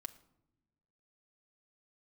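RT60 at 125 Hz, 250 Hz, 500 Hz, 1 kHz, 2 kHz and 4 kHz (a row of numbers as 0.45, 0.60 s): 1.6, 1.5, 1.0, 0.75, 0.55, 0.50 s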